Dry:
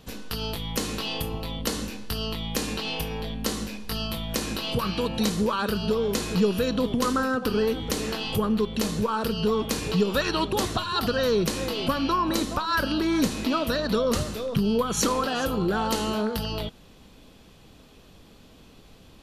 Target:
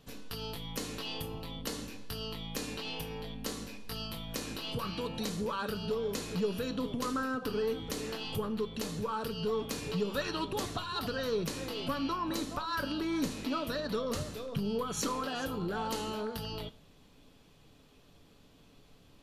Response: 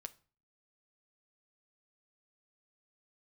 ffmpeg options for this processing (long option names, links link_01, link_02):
-filter_complex "[0:a]aeval=exprs='0.299*(cos(1*acos(clip(val(0)/0.299,-1,1)))-cos(1*PI/2))+0.0119*(cos(5*acos(clip(val(0)/0.299,-1,1)))-cos(5*PI/2))':channel_layout=same[link_01];[1:a]atrim=start_sample=2205[link_02];[link_01][link_02]afir=irnorm=-1:irlink=0,volume=-5.5dB"